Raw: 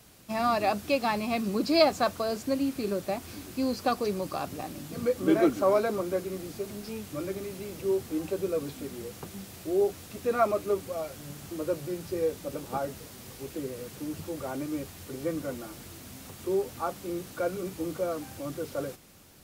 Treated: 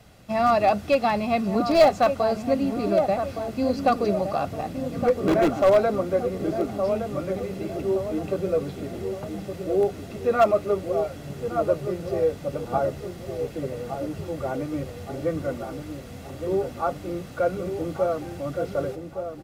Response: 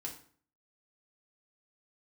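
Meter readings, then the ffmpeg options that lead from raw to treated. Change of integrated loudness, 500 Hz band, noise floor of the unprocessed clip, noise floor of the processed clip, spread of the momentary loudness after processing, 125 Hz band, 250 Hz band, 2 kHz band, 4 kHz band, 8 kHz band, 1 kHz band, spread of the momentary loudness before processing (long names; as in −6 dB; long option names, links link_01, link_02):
+5.5 dB, +6.5 dB, −47 dBFS, −39 dBFS, 13 LU, +8.0 dB, +3.5 dB, +3.5 dB, −0.5 dB, can't be measured, +7.0 dB, 14 LU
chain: -filter_complex "[0:a]asplit=2[link_01][link_02];[link_02]adelay=1166,lowpass=frequency=1100:poles=1,volume=-7dB,asplit=2[link_03][link_04];[link_04]adelay=1166,lowpass=frequency=1100:poles=1,volume=0.5,asplit=2[link_05][link_06];[link_06]adelay=1166,lowpass=frequency=1100:poles=1,volume=0.5,asplit=2[link_07][link_08];[link_08]adelay=1166,lowpass=frequency=1100:poles=1,volume=0.5,asplit=2[link_09][link_10];[link_10]adelay=1166,lowpass=frequency=1100:poles=1,volume=0.5,asplit=2[link_11][link_12];[link_12]adelay=1166,lowpass=frequency=1100:poles=1,volume=0.5[link_13];[link_01][link_03][link_05][link_07][link_09][link_11][link_13]amix=inputs=7:normalize=0,asplit=2[link_14][link_15];[link_15]aeval=exprs='(mod(6.31*val(0)+1,2)-1)/6.31':channel_layout=same,volume=-8.5dB[link_16];[link_14][link_16]amix=inputs=2:normalize=0,lowpass=frequency=2100:poles=1,bandreject=frequency=1300:width=16,aecho=1:1:1.5:0.38,volume=3dB"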